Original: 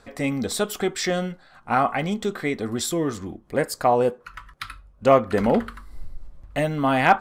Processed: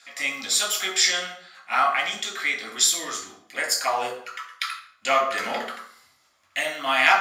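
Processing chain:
high-pass filter 1,200 Hz 12 dB per octave
convolution reverb RT60 0.60 s, pre-delay 3 ms, DRR −0.5 dB

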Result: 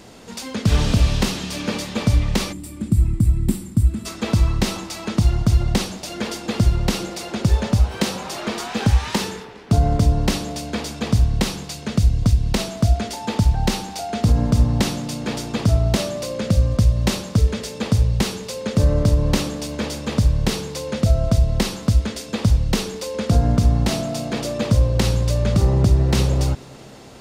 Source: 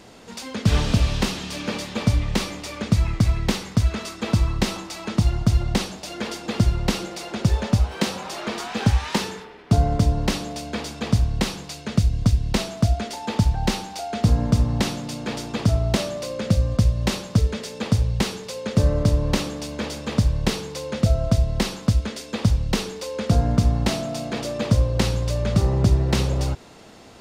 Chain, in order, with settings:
high-shelf EQ 6,400 Hz +5.5 dB
on a send: tape delay 205 ms, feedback 86%, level −24 dB, low-pass 5,900 Hz
on the sum: gain on a spectral selection 0:02.53–0:04.06, 380–7,200 Hz −16 dB
low-shelf EQ 410 Hz +3.5 dB
boost into a limiter +6.5 dB
level −5.5 dB

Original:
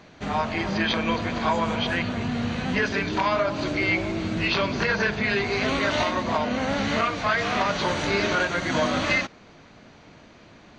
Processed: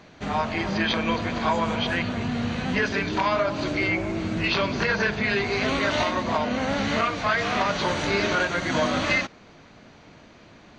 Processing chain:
0:03.87–0:04.44: dynamic equaliser 3,800 Hz, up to −8 dB, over −42 dBFS, Q 1.3

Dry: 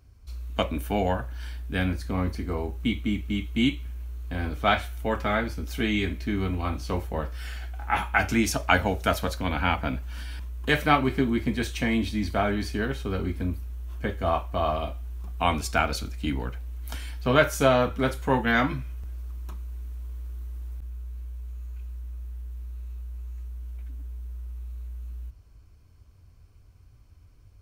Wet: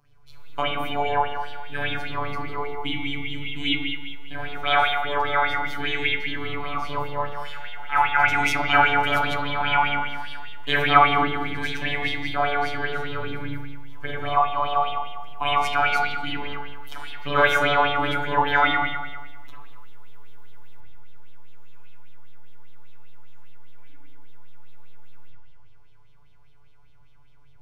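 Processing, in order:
phases set to zero 144 Hz
spring reverb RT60 1.3 s, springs 36/46 ms, chirp 35 ms, DRR −6.5 dB
auto-filter bell 5 Hz 890–3,600 Hz +15 dB
level −5.5 dB

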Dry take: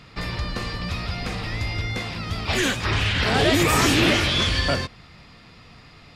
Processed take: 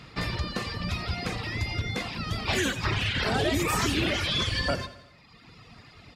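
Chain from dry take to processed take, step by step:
sub-octave generator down 2 octaves, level +1 dB
high-pass filter 67 Hz
downward compressor 3 to 1, threshold −22 dBFS, peak gain reduction 6.5 dB
reverb reduction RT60 1.3 s
repeating echo 88 ms, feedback 55%, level −16 dB

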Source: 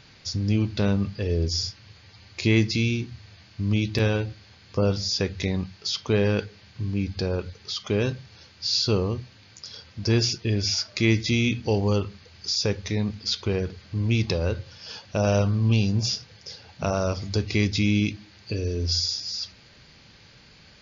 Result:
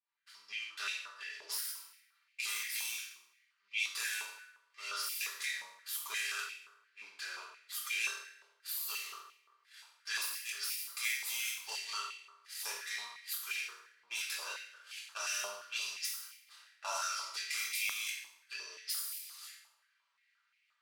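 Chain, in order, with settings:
gap after every zero crossing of 0.093 ms
high-shelf EQ 5,300 Hz +5 dB
automatic gain control gain up to 4 dB
first difference
downward expander −40 dBFS
low-pass that shuts in the quiet parts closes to 2,200 Hz, open at −27.5 dBFS
downward compressor 6 to 1, threshold −33 dBFS, peak gain reduction 11 dB
soft clipping −21.5 dBFS, distortion −22 dB
convolution reverb RT60 0.95 s, pre-delay 3 ms, DRR −8 dB
high-pass on a step sequencer 5.7 Hz 900–2,300 Hz
level −7.5 dB

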